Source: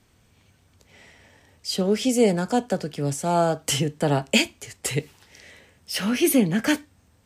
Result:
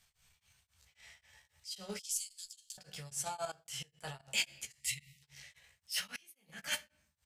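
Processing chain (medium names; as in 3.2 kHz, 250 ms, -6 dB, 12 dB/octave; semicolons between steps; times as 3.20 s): amplifier tone stack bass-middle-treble 10-0-10; doubling 15 ms -4.5 dB; simulated room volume 93 m³, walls mixed, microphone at 0.33 m; 4.80–5.23 s: spectral selection erased 240–1800 Hz; 6.03–6.53 s: inverted gate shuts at -23 dBFS, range -25 dB; transient shaper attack -12 dB, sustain -8 dB; 1.99–2.78 s: inverse Chebyshev band-stop 160–830 Hz, stop band 80 dB; 3.45–4.28 s: level held to a coarse grid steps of 20 dB; tremolo of two beating tones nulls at 3.7 Hz; trim -1.5 dB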